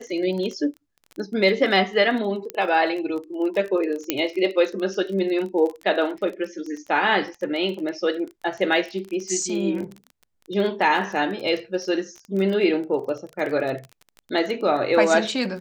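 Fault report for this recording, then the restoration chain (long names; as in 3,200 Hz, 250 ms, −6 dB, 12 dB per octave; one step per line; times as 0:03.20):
surface crackle 22 per second −29 dBFS
0:02.50: click −13 dBFS
0:04.10: click −5 dBFS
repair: click removal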